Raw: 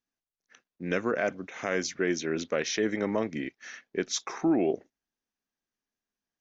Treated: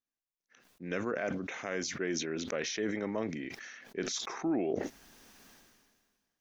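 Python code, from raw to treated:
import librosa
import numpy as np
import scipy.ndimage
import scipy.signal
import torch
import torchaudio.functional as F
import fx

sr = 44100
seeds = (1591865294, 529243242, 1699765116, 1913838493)

y = fx.sustainer(x, sr, db_per_s=33.0)
y = y * 10.0 ** (-7.0 / 20.0)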